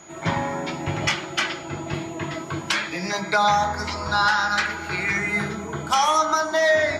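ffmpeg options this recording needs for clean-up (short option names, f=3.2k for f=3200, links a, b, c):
-af "bandreject=f=6.8k:w=30"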